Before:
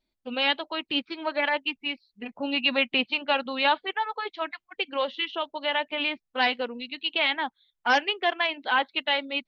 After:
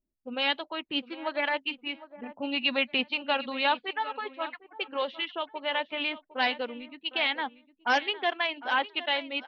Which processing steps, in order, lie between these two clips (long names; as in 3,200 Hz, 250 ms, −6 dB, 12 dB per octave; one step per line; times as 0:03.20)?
repeating echo 757 ms, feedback 22%, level −15.5 dB
low-pass that shuts in the quiet parts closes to 440 Hz, open at −22 dBFS
downsampling to 16,000 Hz
level −3 dB